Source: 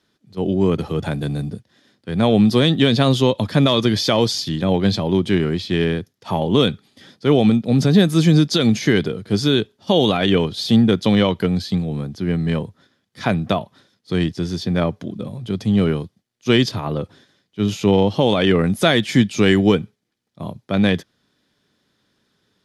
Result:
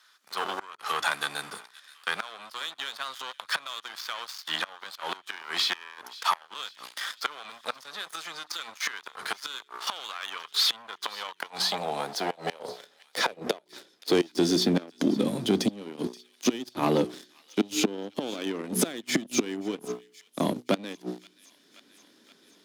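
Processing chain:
high-shelf EQ 3,900 Hz +7 dB
hum removal 61.09 Hz, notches 7
gate with flip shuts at −10 dBFS, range −27 dB
leveller curve on the samples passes 3
in parallel at −0.5 dB: downward compressor, threshold −29 dBFS, peak gain reduction 17 dB
on the sum: high-pass filter sweep 1,200 Hz → 280 Hz, 0:10.76–0:14.69
on a send: delay with a high-pass on its return 526 ms, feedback 56%, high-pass 2,200 Hz, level −24 dB
on the sum: multiband upward and downward compressor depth 40%
level −8.5 dB

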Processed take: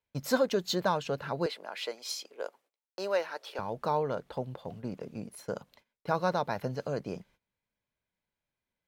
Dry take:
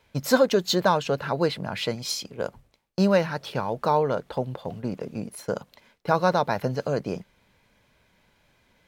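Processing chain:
noise gate −52 dBFS, range −19 dB
0:01.46–0:03.59: high-pass filter 370 Hz 24 dB per octave
level −7.5 dB

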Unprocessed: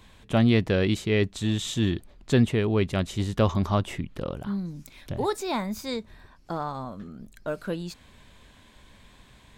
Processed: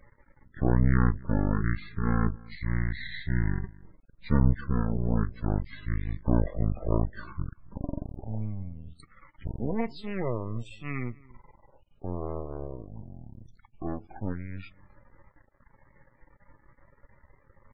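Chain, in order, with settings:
half-wave rectification
slap from a distant wall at 25 metres, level −23 dB
spectral peaks only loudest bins 64
change of speed 0.54×

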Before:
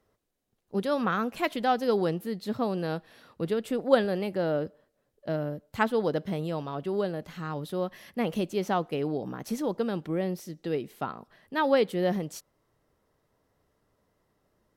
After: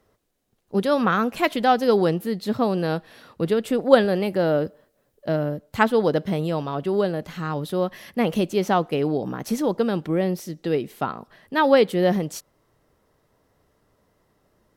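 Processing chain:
0:04.26–0:05.30: high-shelf EQ 12,000 Hz +8.5 dB
level +7 dB

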